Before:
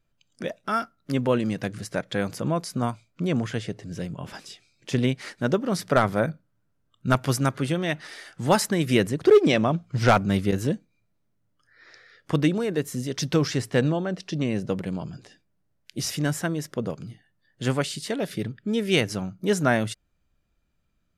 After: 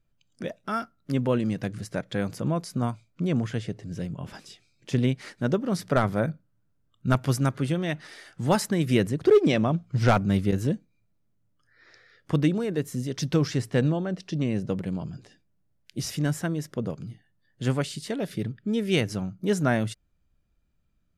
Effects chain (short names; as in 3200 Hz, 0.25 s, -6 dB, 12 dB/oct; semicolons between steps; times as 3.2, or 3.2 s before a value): low shelf 290 Hz +6.5 dB; gain -4.5 dB